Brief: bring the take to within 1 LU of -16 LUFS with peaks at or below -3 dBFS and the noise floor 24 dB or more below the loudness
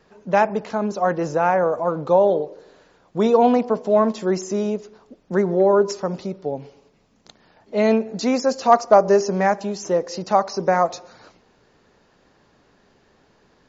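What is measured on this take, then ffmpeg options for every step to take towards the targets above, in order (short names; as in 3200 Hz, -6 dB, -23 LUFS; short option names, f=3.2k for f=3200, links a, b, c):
loudness -20.0 LUFS; peak -2.0 dBFS; loudness target -16.0 LUFS
-> -af "volume=4dB,alimiter=limit=-3dB:level=0:latency=1"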